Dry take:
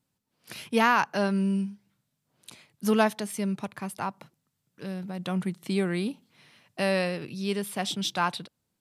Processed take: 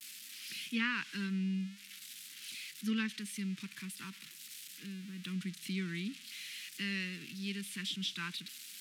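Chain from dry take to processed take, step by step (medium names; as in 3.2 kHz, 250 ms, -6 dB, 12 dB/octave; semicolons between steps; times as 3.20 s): zero-crossing glitches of -24 dBFS; Chebyshev band-stop 210–2200 Hz, order 2; three-band isolator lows -22 dB, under 190 Hz, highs -13 dB, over 3.9 kHz; low-pass that closes with the level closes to 2.1 kHz, closed at -20.5 dBFS; vibrato 0.47 Hz 46 cents; trim -3.5 dB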